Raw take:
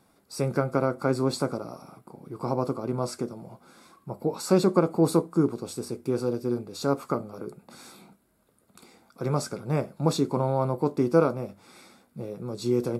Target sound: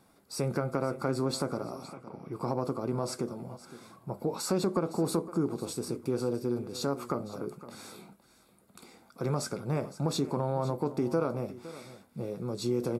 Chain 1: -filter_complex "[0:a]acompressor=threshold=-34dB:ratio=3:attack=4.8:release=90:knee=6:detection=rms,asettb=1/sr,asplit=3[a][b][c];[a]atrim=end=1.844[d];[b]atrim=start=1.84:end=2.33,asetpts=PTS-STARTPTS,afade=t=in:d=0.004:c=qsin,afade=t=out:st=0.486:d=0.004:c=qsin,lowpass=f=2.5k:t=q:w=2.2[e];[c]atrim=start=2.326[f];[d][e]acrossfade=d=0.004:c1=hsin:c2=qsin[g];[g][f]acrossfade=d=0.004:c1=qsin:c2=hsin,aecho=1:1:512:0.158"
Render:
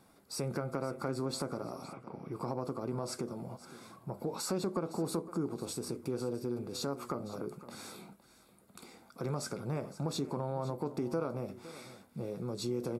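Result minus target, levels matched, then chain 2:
compressor: peak gain reduction +5.5 dB
-filter_complex "[0:a]acompressor=threshold=-25.5dB:ratio=3:attack=4.8:release=90:knee=6:detection=rms,asettb=1/sr,asplit=3[a][b][c];[a]atrim=end=1.844[d];[b]atrim=start=1.84:end=2.33,asetpts=PTS-STARTPTS,afade=t=in:d=0.004:c=qsin,afade=t=out:st=0.486:d=0.004:c=qsin,lowpass=f=2.5k:t=q:w=2.2[e];[c]atrim=start=2.326[f];[d][e]acrossfade=d=0.004:c1=hsin:c2=qsin[g];[g][f]acrossfade=d=0.004:c1=qsin:c2=hsin,aecho=1:1:512:0.158"

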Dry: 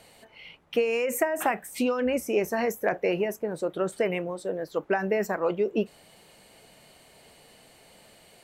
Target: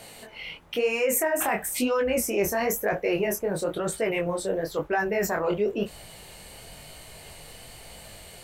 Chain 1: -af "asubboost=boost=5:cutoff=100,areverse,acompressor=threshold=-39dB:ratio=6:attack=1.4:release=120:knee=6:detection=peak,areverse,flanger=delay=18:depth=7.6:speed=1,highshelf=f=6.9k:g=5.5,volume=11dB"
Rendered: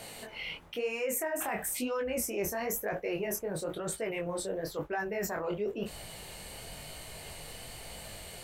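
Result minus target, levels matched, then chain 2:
compressor: peak gain reduction +9 dB
-af "asubboost=boost=5:cutoff=100,areverse,acompressor=threshold=-28.5dB:ratio=6:attack=1.4:release=120:knee=6:detection=peak,areverse,flanger=delay=18:depth=7.6:speed=1,highshelf=f=6.9k:g=5.5,volume=11dB"

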